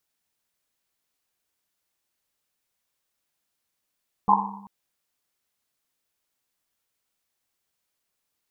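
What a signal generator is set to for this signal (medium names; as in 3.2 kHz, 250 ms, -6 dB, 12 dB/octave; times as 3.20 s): Risset drum length 0.39 s, pitch 200 Hz, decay 1.25 s, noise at 940 Hz, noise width 240 Hz, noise 75%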